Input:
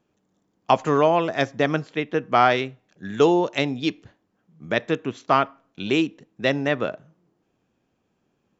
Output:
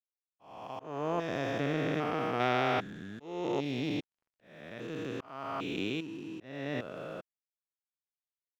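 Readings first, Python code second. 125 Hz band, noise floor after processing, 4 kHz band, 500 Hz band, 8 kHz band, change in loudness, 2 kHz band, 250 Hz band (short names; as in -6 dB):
-8.5 dB, under -85 dBFS, -11.0 dB, -13.0 dB, n/a, -12.5 dB, -11.0 dB, -10.5 dB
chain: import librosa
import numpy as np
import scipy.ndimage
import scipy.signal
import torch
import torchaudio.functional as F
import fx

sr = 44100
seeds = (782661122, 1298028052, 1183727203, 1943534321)

y = fx.spec_steps(x, sr, hold_ms=400)
y = np.sign(y) * np.maximum(np.abs(y) - 10.0 ** (-54.0 / 20.0), 0.0)
y = fx.auto_swell(y, sr, attack_ms=616.0)
y = y * librosa.db_to_amplitude(-3.0)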